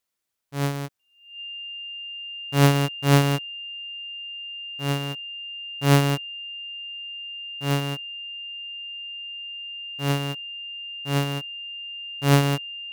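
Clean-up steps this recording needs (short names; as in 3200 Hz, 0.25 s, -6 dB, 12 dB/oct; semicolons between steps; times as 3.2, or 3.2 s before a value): notch 2800 Hz, Q 30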